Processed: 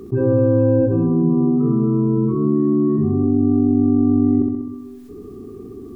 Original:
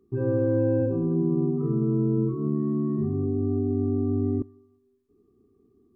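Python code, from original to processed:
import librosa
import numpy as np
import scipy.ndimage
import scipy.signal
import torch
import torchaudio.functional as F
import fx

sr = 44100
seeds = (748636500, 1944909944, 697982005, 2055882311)

y = fx.room_flutter(x, sr, wall_m=11.1, rt60_s=0.58)
y = fx.env_flatten(y, sr, amount_pct=50)
y = y * 10.0 ** (5.5 / 20.0)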